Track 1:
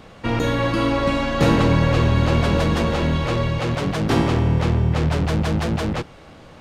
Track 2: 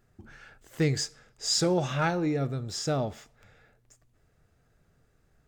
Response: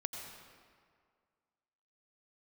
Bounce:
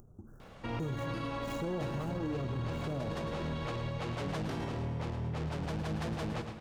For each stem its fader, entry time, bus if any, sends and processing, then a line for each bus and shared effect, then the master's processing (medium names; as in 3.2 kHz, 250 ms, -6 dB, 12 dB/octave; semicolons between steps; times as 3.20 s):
-16.0 dB, 0.40 s, send -4.5 dB, echo send -5.5 dB, peaking EQ 840 Hz +2 dB; peak limiter -15 dBFS, peak gain reduction 8 dB
-4.5 dB, 0.00 s, send -6 dB, no echo send, median filter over 41 samples; elliptic band-stop 1.3–6.2 kHz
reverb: on, RT60 2.0 s, pre-delay 81 ms
echo: feedback delay 110 ms, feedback 43%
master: upward compressor, threshold -46 dBFS; peak limiter -28.5 dBFS, peak gain reduction 11 dB